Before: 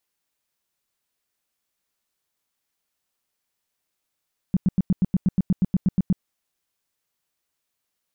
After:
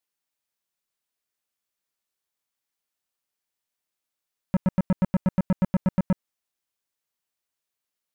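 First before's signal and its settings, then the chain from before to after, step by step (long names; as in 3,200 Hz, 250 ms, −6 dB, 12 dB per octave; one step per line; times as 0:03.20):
tone bursts 186 Hz, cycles 5, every 0.12 s, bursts 14, −14.5 dBFS
low-shelf EQ 250 Hz −4 dB
leveller curve on the samples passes 3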